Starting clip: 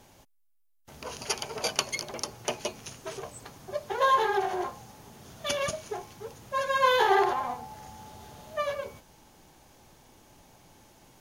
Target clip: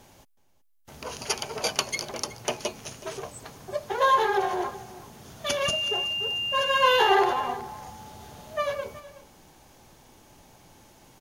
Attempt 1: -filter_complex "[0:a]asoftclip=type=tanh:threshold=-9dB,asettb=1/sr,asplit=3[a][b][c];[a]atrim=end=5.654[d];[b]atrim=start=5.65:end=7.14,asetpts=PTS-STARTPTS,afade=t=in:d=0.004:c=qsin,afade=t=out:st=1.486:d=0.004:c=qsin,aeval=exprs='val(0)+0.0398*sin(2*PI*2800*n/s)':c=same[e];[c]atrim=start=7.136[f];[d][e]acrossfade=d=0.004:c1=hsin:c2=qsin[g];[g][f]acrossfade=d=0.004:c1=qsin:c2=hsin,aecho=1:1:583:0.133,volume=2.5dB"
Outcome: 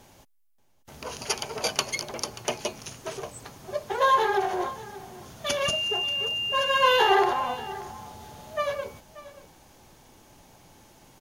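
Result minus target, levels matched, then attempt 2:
echo 0.211 s late
-filter_complex "[0:a]asoftclip=type=tanh:threshold=-9dB,asettb=1/sr,asplit=3[a][b][c];[a]atrim=end=5.654[d];[b]atrim=start=5.65:end=7.14,asetpts=PTS-STARTPTS,afade=t=in:d=0.004:c=qsin,afade=t=out:st=1.486:d=0.004:c=qsin,aeval=exprs='val(0)+0.0398*sin(2*PI*2800*n/s)':c=same[e];[c]atrim=start=7.136[f];[d][e]acrossfade=d=0.004:c1=hsin:c2=qsin[g];[g][f]acrossfade=d=0.004:c1=qsin:c2=hsin,aecho=1:1:372:0.133,volume=2.5dB"

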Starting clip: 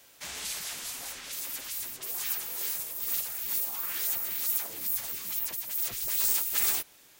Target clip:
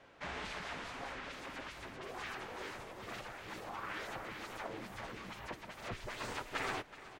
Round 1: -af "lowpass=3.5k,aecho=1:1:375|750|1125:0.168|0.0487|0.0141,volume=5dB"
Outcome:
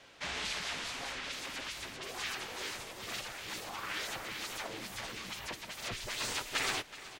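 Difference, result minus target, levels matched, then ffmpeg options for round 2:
4000 Hz band +5.0 dB
-af "lowpass=1.6k,aecho=1:1:375|750|1125:0.168|0.0487|0.0141,volume=5dB"

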